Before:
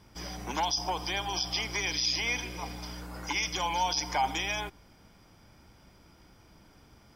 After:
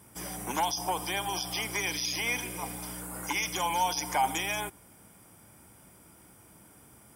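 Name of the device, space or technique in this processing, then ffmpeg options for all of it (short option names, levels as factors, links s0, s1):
budget condenser microphone: -af "highpass=91,highshelf=f=6800:t=q:w=3:g=12,volume=1.19"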